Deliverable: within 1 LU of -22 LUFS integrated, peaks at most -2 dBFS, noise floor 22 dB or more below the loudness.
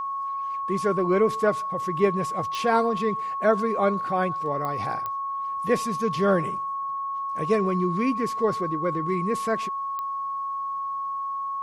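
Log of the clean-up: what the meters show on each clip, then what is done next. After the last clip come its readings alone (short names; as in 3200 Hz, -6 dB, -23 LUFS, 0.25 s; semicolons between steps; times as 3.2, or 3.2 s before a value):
clicks 4; steady tone 1100 Hz; tone level -27 dBFS; loudness -25.5 LUFS; peak -9.0 dBFS; loudness target -22.0 LUFS
-> de-click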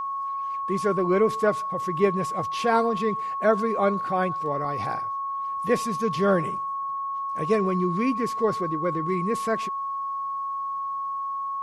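clicks 0; steady tone 1100 Hz; tone level -27 dBFS
-> notch 1100 Hz, Q 30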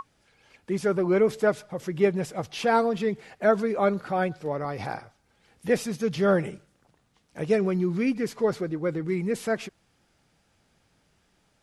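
steady tone none; loudness -26.5 LUFS; peak -9.5 dBFS; loudness target -22.0 LUFS
-> gain +4.5 dB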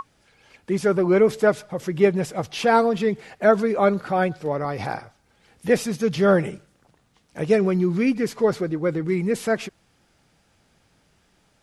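loudness -22.0 LUFS; peak -5.0 dBFS; noise floor -63 dBFS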